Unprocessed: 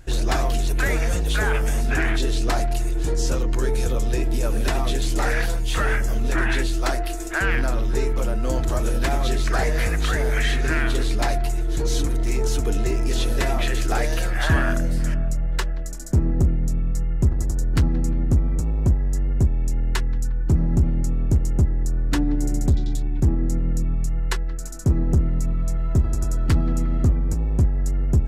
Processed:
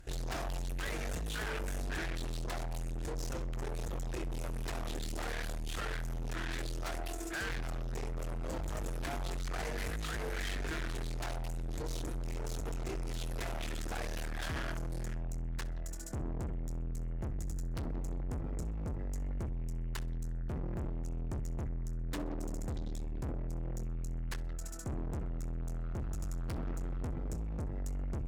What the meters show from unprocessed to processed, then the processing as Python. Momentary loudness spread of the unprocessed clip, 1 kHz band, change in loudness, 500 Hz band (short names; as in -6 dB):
4 LU, -14.5 dB, -16.5 dB, -15.5 dB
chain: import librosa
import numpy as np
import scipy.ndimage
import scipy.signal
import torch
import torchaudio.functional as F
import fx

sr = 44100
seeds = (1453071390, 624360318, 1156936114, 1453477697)

y = fx.hum_notches(x, sr, base_hz=50, count=3)
y = fx.tube_stage(y, sr, drive_db=30.0, bias=0.65)
y = fx.echo_feedback(y, sr, ms=64, feedback_pct=29, wet_db=-19.5)
y = y * librosa.db_to_amplitude(-5.0)